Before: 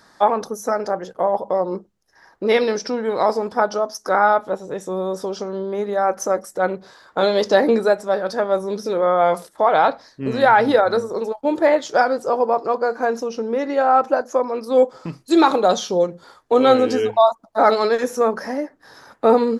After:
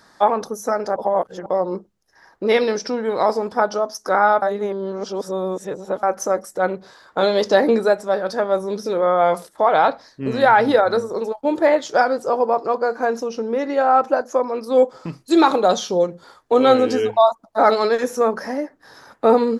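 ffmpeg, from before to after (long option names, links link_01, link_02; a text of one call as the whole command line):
ffmpeg -i in.wav -filter_complex "[0:a]asplit=5[link_01][link_02][link_03][link_04][link_05];[link_01]atrim=end=0.962[link_06];[link_02]atrim=start=0.958:end=1.462,asetpts=PTS-STARTPTS,areverse[link_07];[link_03]atrim=start=1.458:end=4.422[link_08];[link_04]atrim=start=4.418:end=6.032,asetpts=PTS-STARTPTS,areverse[link_09];[link_05]atrim=start=6.028[link_10];[link_06][link_07]acrossfade=duration=0.004:curve1=hsin:curve2=hsin[link_11];[link_11][link_08]acrossfade=duration=0.004:curve1=hsin:curve2=hsin[link_12];[link_12][link_09]acrossfade=duration=0.004:curve1=hsin:curve2=hsin[link_13];[link_13][link_10]acrossfade=duration=0.004:curve1=hsin:curve2=hsin" out.wav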